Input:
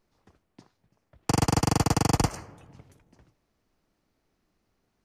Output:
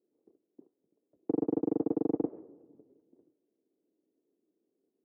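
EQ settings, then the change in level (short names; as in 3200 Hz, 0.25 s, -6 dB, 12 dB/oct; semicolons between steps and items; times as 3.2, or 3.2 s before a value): Butterworth band-pass 360 Hz, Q 1.8; air absorption 290 m; +2.5 dB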